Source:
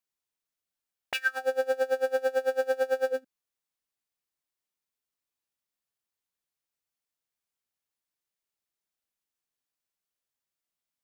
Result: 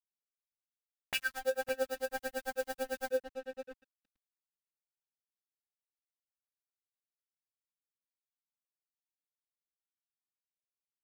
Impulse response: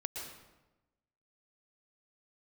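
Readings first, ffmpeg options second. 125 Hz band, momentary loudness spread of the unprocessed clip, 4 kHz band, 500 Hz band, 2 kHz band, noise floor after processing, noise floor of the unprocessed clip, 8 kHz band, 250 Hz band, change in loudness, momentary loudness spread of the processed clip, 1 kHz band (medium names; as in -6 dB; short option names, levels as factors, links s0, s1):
no reading, 4 LU, -2.0 dB, -9.0 dB, -6.5 dB, under -85 dBFS, under -85 dBFS, +1.5 dB, 0.0 dB, -8.0 dB, 10 LU, -6.5 dB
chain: -filter_complex "[0:a]asplit=2[s0][s1];[s1]adelay=559,lowpass=f=1300:p=1,volume=0.501,asplit=2[s2][s3];[s3]adelay=559,lowpass=f=1300:p=1,volume=0.18,asplit=2[s4][s5];[s5]adelay=559,lowpass=f=1300:p=1,volume=0.18[s6];[s0][s2][s4][s6]amix=inputs=4:normalize=0,flanger=delay=3.9:depth=8:regen=34:speed=0.43:shape=triangular,highshelf=f=6800:g=11,aeval=exprs='sgn(val(0))*max(abs(val(0))-0.00531,0)':c=same,asubboost=boost=7:cutoff=230"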